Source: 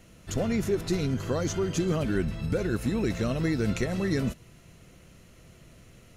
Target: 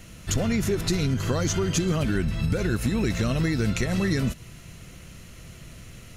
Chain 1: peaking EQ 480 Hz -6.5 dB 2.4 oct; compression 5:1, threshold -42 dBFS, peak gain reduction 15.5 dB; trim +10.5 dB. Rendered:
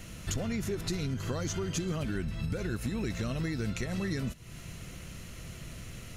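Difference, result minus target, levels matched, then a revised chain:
compression: peak gain reduction +9 dB
peaking EQ 480 Hz -6.5 dB 2.4 oct; compression 5:1, threshold -31 dBFS, peak gain reduction 6.5 dB; trim +10.5 dB

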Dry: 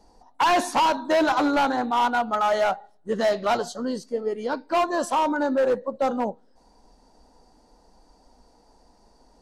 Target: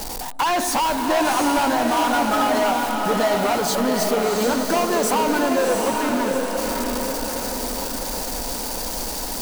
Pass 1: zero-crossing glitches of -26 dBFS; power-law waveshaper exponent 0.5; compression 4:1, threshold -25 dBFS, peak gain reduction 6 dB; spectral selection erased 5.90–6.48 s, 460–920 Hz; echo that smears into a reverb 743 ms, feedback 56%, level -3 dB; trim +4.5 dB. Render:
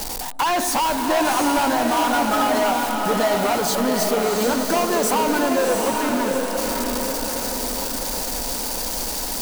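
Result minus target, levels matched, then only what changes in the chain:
zero-crossing glitches: distortion +6 dB
change: zero-crossing glitches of -32.5 dBFS

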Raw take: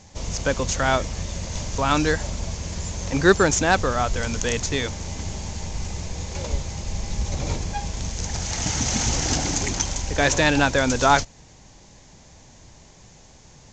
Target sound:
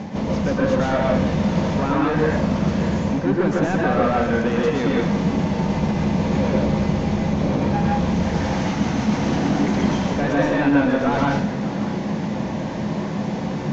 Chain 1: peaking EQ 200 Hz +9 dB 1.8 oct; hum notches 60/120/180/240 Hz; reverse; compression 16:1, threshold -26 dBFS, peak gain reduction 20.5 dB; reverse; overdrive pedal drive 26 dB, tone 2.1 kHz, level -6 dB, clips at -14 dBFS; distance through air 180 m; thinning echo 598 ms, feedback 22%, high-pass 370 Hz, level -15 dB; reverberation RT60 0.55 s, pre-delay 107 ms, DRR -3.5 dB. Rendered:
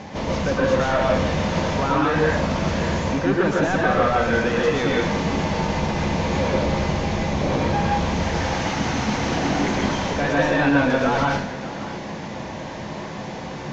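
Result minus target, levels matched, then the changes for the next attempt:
250 Hz band -3.5 dB
change: peaking EQ 200 Hz +21 dB 1.8 oct

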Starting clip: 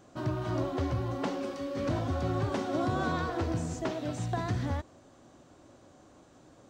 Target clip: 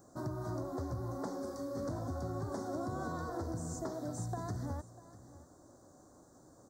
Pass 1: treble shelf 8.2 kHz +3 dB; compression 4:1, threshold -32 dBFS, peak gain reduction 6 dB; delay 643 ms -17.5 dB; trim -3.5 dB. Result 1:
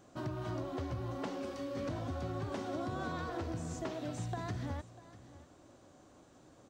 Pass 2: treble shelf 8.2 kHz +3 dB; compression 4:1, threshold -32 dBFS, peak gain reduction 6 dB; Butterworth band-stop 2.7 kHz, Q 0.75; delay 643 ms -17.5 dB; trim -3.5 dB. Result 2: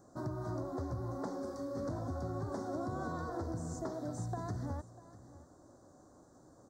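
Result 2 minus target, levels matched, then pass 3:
8 kHz band -4.0 dB
treble shelf 8.2 kHz +13.5 dB; compression 4:1, threshold -32 dBFS, peak gain reduction 6 dB; Butterworth band-stop 2.7 kHz, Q 0.75; delay 643 ms -17.5 dB; trim -3.5 dB

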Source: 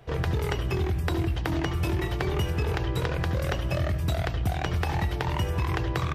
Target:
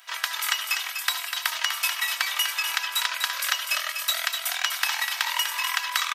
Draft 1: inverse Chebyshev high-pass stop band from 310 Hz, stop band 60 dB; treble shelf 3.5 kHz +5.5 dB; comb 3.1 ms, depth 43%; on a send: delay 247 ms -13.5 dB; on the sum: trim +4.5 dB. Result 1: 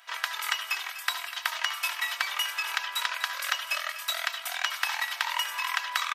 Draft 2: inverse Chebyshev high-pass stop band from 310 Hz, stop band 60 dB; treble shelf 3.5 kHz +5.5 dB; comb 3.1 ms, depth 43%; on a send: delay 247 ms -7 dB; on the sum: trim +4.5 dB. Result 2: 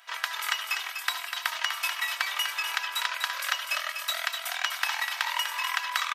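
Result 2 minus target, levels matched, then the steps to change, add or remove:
8 kHz band -3.5 dB
change: treble shelf 3.5 kHz +14.5 dB

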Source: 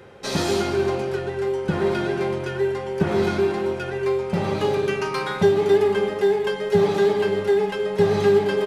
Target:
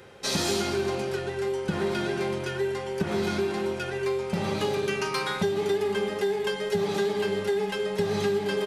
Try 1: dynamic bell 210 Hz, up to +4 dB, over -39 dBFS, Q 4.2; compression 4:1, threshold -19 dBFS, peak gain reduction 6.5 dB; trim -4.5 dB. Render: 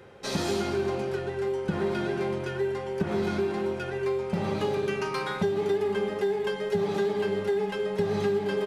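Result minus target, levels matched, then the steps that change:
4 kHz band -5.5 dB
add after compression: treble shelf 2.5 kHz +9 dB

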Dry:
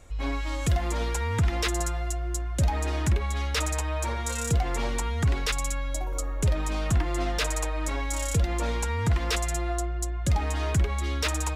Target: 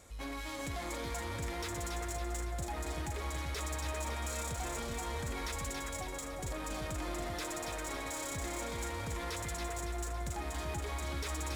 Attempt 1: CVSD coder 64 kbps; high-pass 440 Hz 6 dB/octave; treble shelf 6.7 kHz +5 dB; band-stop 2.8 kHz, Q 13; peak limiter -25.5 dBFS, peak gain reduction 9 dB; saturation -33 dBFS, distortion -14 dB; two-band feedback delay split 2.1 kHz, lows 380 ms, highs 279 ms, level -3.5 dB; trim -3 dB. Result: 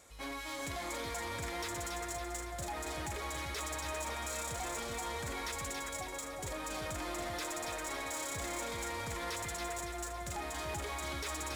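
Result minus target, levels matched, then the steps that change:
125 Hz band -5.5 dB
change: high-pass 130 Hz 6 dB/octave

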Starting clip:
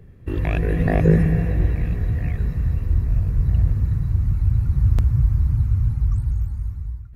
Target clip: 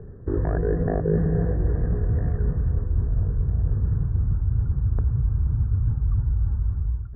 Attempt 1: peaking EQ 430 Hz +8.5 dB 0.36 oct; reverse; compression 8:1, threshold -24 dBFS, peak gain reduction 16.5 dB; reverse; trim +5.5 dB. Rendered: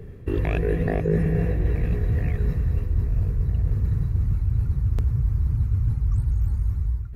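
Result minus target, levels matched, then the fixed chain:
2 kHz band +6.0 dB
elliptic low-pass 1.6 kHz, stop band 40 dB; peaking EQ 430 Hz +8.5 dB 0.36 oct; reverse; compression 8:1, threshold -24 dBFS, peak gain reduction 15.5 dB; reverse; trim +5.5 dB

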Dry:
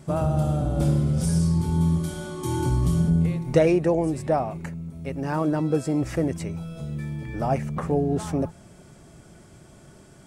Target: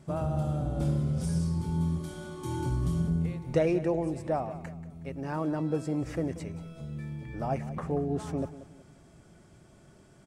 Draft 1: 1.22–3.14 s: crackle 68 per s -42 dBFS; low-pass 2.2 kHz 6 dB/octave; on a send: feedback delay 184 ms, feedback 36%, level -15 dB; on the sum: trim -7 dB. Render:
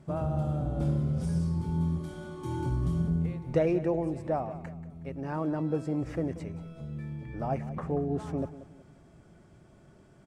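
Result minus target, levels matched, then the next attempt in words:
8 kHz band -7.5 dB
1.22–3.14 s: crackle 68 per s -42 dBFS; low-pass 6.8 kHz 6 dB/octave; on a send: feedback delay 184 ms, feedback 36%, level -15 dB; on the sum: trim -7 dB

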